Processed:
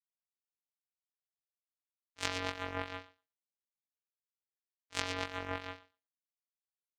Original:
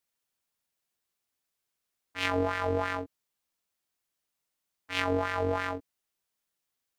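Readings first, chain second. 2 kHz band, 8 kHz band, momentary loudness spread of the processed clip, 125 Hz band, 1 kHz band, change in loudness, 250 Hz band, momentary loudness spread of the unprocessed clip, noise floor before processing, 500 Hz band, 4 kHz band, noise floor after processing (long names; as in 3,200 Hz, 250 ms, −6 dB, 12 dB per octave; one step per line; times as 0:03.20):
−7.0 dB, +3.5 dB, 11 LU, −10.5 dB, −9.0 dB, −8.5 dB, −11.0 dB, 11 LU, −84 dBFS, −13.0 dB, −2.5 dB, below −85 dBFS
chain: feedback echo with a high-pass in the loop 119 ms, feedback 48%, high-pass 240 Hz, level −4.5 dB
power curve on the samples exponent 3
level +1 dB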